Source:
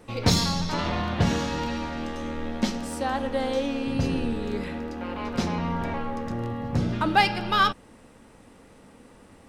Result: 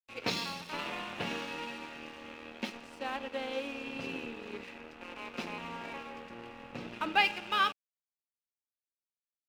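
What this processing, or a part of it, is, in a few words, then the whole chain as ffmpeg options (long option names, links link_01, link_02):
pocket radio on a weak battery: -af "highpass=310,lowpass=4200,equalizer=frequency=670:width_type=o:width=0.77:gain=-2.5,aeval=exprs='sgn(val(0))*max(abs(val(0))-0.0106,0)':channel_layout=same,equalizer=frequency=2600:width_type=o:width=0.36:gain=10.5,volume=-6.5dB"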